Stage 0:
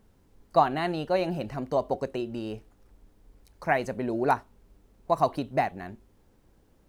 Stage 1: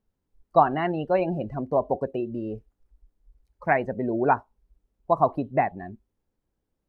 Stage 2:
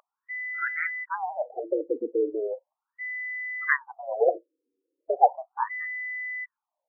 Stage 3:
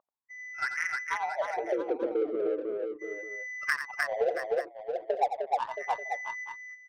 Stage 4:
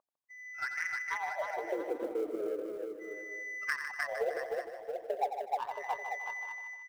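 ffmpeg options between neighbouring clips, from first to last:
-filter_complex "[0:a]acrossover=split=3800[s0][s1];[s1]acompressor=threshold=0.00158:ratio=4:attack=1:release=60[s2];[s0][s2]amix=inputs=2:normalize=0,afftdn=nr=21:nf=-36,volume=1.41"
-af "afreqshift=81,aeval=exprs='val(0)+0.0178*sin(2*PI*2000*n/s)':c=same,afftfilt=real='re*between(b*sr/1024,360*pow(1900/360,0.5+0.5*sin(2*PI*0.37*pts/sr))/1.41,360*pow(1900/360,0.5+0.5*sin(2*PI*0.37*pts/sr))*1.41)':imag='im*between(b*sr/1024,360*pow(1900/360,0.5+0.5*sin(2*PI*0.37*pts/sr))/1.41,360*pow(1900/360,0.5+0.5*sin(2*PI*0.37*pts/sr))*1.41)':win_size=1024:overlap=0.75,volume=1.68"
-filter_complex "[0:a]adynamicsmooth=sensitivity=2:basefreq=560,asplit=2[s0][s1];[s1]aecho=0:1:87|305|673|885:0.299|0.631|0.266|0.15[s2];[s0][s2]amix=inputs=2:normalize=0,acompressor=threshold=0.0501:ratio=3"
-filter_complex "[0:a]acrusher=bits=8:mode=log:mix=0:aa=0.000001,asplit=2[s0][s1];[s1]aecho=0:1:153|306|459|612|765:0.355|0.17|0.0817|0.0392|0.0188[s2];[s0][s2]amix=inputs=2:normalize=0,volume=0.531"

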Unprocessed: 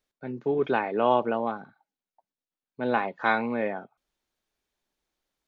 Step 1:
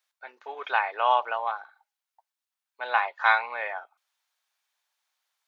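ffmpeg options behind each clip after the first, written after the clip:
-af "highpass=f=810:w=0.5412,highpass=f=810:w=1.3066,volume=1.78"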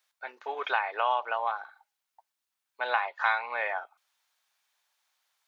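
-af "acompressor=threshold=0.0316:ratio=2.5,volume=1.5"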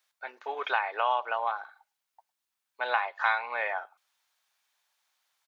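-filter_complex "[0:a]asplit=2[s0][s1];[s1]adelay=105,volume=0.0355,highshelf=f=4000:g=-2.36[s2];[s0][s2]amix=inputs=2:normalize=0"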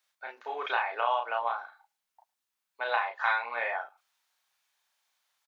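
-filter_complex "[0:a]asplit=2[s0][s1];[s1]adelay=34,volume=0.708[s2];[s0][s2]amix=inputs=2:normalize=0,volume=0.75"

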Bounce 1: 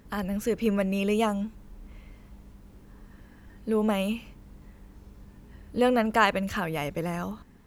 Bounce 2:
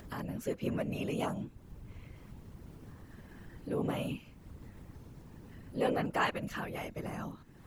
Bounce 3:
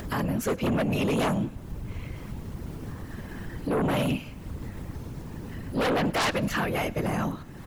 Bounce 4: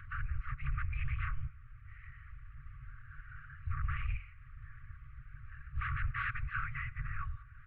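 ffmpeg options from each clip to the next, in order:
-af "acompressor=mode=upward:threshold=0.0316:ratio=2.5,afftfilt=real='hypot(re,im)*cos(2*PI*random(0))':imag='hypot(re,im)*sin(2*PI*random(1))':win_size=512:overlap=0.75,volume=0.708"
-filter_complex "[0:a]asplit=2[s0][s1];[s1]aeval=exprs='0.141*sin(PI/2*5.62*val(0)/0.141)':c=same,volume=0.422[s2];[s0][s2]amix=inputs=2:normalize=0,aecho=1:1:105|210|315|420:0.075|0.039|0.0203|0.0105"
-af "highpass=f=160:t=q:w=0.5412,highpass=f=160:t=q:w=1.307,lowpass=f=2400:t=q:w=0.5176,lowpass=f=2400:t=q:w=0.7071,lowpass=f=2400:t=q:w=1.932,afreqshift=-200,afftfilt=real='re*(1-between(b*sr/4096,150,1100))':imag='im*(1-between(b*sr/4096,150,1100))':win_size=4096:overlap=0.75,volume=0.531"

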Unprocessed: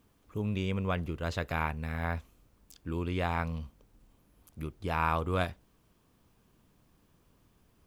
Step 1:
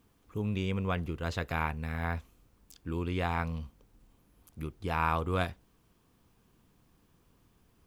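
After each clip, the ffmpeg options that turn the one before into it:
-af "bandreject=f=600:w=12"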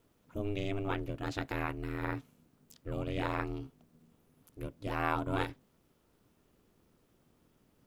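-af "aeval=exprs='val(0)*sin(2*PI*200*n/s)':c=same"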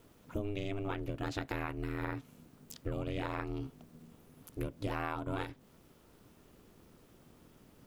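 -af "acompressor=threshold=0.00891:ratio=12,volume=2.66"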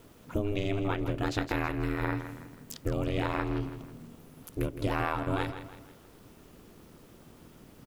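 -af "aecho=1:1:162|324|486|648:0.282|0.121|0.0521|0.0224,volume=2.11"

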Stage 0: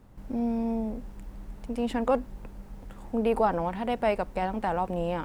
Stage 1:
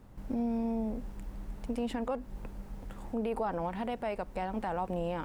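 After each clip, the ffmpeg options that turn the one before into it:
-af "alimiter=limit=0.0631:level=0:latency=1:release=226"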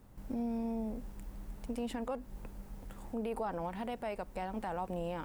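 -af "highshelf=f=7200:g=9,volume=0.631"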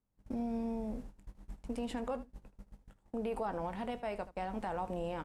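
-filter_complex "[0:a]lowpass=9600,agate=range=0.0447:threshold=0.00794:ratio=16:detection=peak,asplit=2[s0][s1];[s1]aecho=0:1:20|78:0.224|0.158[s2];[s0][s2]amix=inputs=2:normalize=0"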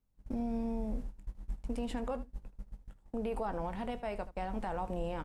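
-af "lowshelf=f=66:g=12"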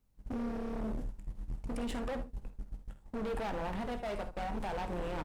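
-filter_complex "[0:a]asoftclip=type=hard:threshold=0.0106,asplit=2[s0][s1];[s1]aecho=0:1:50|63:0.211|0.141[s2];[s0][s2]amix=inputs=2:normalize=0,volume=1.78"

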